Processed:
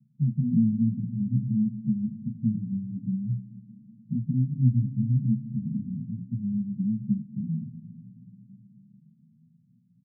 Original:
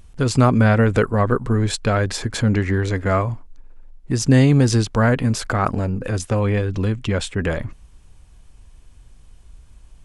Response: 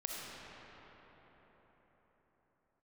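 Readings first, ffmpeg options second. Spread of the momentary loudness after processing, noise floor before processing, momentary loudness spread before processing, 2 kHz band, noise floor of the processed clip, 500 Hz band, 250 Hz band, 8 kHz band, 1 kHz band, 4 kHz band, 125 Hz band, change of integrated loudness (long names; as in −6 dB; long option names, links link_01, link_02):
10 LU, −48 dBFS, 9 LU, below −40 dB, −62 dBFS, below −40 dB, −5.5 dB, below −40 dB, below −40 dB, below −40 dB, −8.5 dB, −9.0 dB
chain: -filter_complex "[0:a]aeval=exprs='(tanh(5.01*val(0)+0.45)-tanh(0.45))/5.01':channel_layout=same,asuperpass=centerf=170:order=12:qfactor=1.4,asplit=2[link_01][link_02];[1:a]atrim=start_sample=2205,adelay=24[link_03];[link_02][link_03]afir=irnorm=-1:irlink=0,volume=-13.5dB[link_04];[link_01][link_04]amix=inputs=2:normalize=0,asplit=2[link_05][link_06];[link_06]adelay=11.3,afreqshift=0.56[link_07];[link_05][link_07]amix=inputs=2:normalize=1,volume=4dB"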